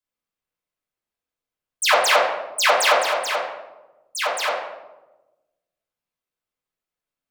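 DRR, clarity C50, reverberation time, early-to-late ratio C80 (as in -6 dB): -7.0 dB, 3.0 dB, 1.1 s, 5.5 dB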